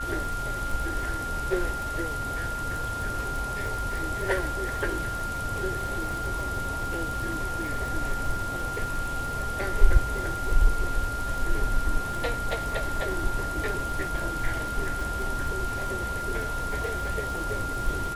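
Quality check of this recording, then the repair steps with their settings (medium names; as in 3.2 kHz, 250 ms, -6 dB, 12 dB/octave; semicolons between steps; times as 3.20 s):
crackle 54 per s -33 dBFS
whine 1.4 kHz -31 dBFS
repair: de-click; band-stop 1.4 kHz, Q 30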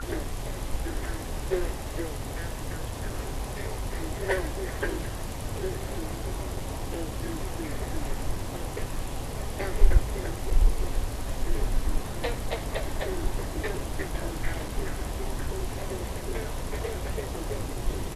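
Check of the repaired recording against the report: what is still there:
nothing left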